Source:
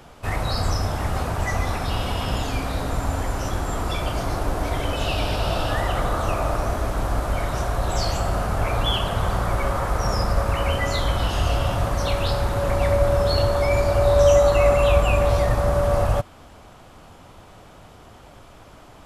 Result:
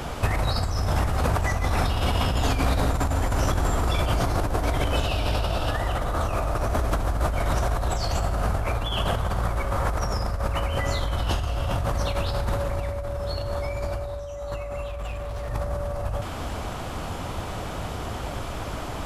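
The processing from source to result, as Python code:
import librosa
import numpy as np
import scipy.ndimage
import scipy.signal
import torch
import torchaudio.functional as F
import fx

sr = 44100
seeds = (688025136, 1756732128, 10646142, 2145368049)

y = fx.over_compress(x, sr, threshold_db=-31.0, ratio=-1.0)
y = fx.overload_stage(y, sr, gain_db=34.5, at=(14.87, 15.49))
y = fx.peak_eq(y, sr, hz=61.0, db=4.5, octaves=1.4)
y = y * librosa.db_to_amplitude(4.0)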